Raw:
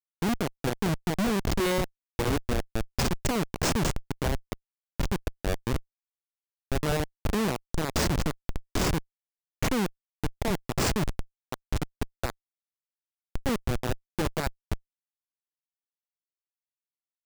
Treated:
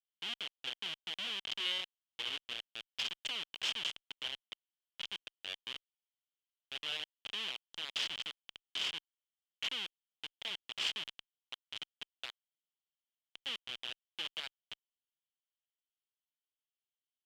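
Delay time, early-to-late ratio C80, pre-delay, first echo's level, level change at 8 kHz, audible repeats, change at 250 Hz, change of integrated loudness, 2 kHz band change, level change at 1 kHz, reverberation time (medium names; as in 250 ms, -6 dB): no echo, no reverb, no reverb, no echo, -16.0 dB, no echo, -32.0 dB, -9.5 dB, -7.5 dB, -19.0 dB, no reverb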